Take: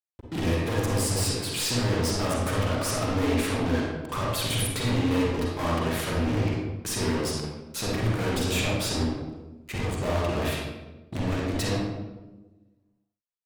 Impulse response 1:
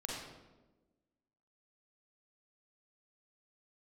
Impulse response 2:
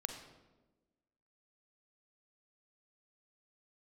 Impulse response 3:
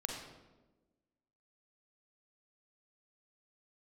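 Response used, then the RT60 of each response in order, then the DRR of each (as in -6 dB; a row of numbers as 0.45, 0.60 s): 1; 1.2, 1.2, 1.2 s; -4.0, 5.0, 0.0 dB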